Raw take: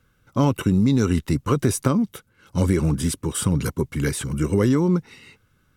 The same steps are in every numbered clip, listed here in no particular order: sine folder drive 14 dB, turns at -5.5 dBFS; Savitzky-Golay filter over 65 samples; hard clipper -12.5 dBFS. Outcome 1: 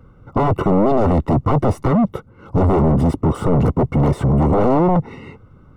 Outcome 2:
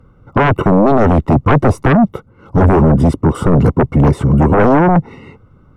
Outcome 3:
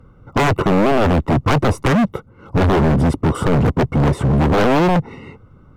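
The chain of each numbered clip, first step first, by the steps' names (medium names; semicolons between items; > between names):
sine folder > hard clipper > Savitzky-Golay filter; hard clipper > Savitzky-Golay filter > sine folder; Savitzky-Golay filter > sine folder > hard clipper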